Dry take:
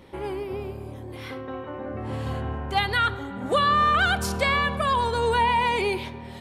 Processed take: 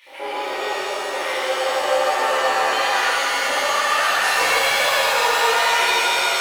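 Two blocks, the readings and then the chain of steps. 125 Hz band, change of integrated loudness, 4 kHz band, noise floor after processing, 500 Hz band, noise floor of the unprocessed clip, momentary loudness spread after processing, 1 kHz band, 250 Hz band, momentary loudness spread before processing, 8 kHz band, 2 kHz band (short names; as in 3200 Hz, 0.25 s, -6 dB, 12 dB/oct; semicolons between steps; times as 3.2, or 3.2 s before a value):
under -20 dB, +5.5 dB, +10.5 dB, -27 dBFS, +6.0 dB, -39 dBFS, 8 LU, +4.5 dB, -6.0 dB, 16 LU, +16.0 dB, +8.5 dB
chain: HPF 330 Hz 12 dB/oct; compressor 10:1, threshold -32 dBFS, peak gain reduction 14.5 dB; crackle 85/s -46 dBFS; LFO high-pass square 7.7 Hz 590–2300 Hz; flange 0.35 Hz, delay 3.3 ms, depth 3.1 ms, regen -51%; shimmer reverb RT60 3.7 s, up +7 st, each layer -2 dB, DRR -10.5 dB; gain +6.5 dB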